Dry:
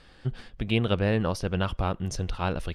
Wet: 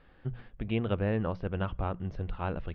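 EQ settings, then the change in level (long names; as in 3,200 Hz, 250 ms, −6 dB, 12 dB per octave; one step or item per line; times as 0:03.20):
low-pass filter 3,000 Hz 12 dB per octave
high-frequency loss of the air 280 metres
mains-hum notches 60/120/180 Hz
−4.0 dB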